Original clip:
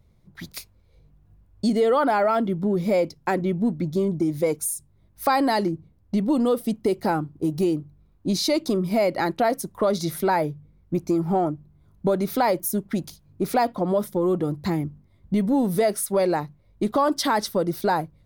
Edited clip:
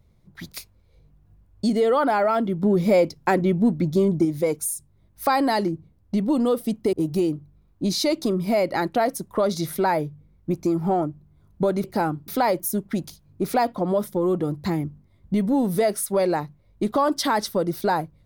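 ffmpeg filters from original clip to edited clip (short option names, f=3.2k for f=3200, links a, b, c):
-filter_complex "[0:a]asplit=6[a][b][c][d][e][f];[a]atrim=end=2.632[g];[b]atrim=start=2.628:end=4.252,asetpts=PTS-STARTPTS,volume=3.5dB[h];[c]atrim=start=4.248:end=6.932[i];[d]atrim=start=7.368:end=12.282[j];[e]atrim=start=6.928:end=7.372[k];[f]atrim=start=12.278[l];[g][h]acrossfade=d=0.004:c1=hsin:c2=hsin[m];[m][i]acrossfade=d=0.004:c1=hsin:c2=hsin[n];[n][j]acrossfade=d=0.004:c1=hsin:c2=hsin[o];[o][k]acrossfade=d=0.004:c1=hsin:c2=hsin[p];[p][l]acrossfade=d=0.004:c1=hsin:c2=hsin"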